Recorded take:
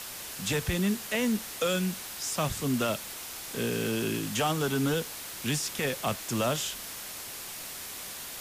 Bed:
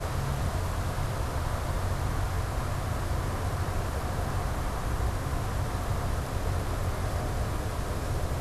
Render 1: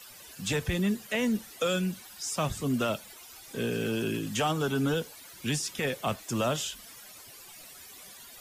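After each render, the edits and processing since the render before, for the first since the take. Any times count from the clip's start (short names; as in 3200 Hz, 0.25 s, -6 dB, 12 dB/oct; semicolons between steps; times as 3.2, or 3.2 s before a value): denoiser 14 dB, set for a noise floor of -41 dBFS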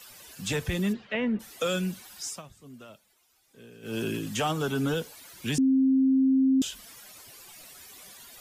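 0.92–1.39 LPF 4600 Hz -> 2200 Hz 24 dB/oct; 2.26–3.98 dip -19 dB, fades 0.16 s; 5.58–6.62 bleep 265 Hz -18.5 dBFS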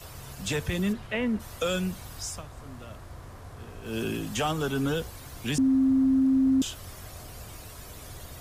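add bed -14 dB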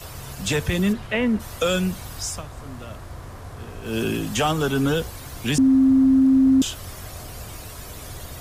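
gain +6.5 dB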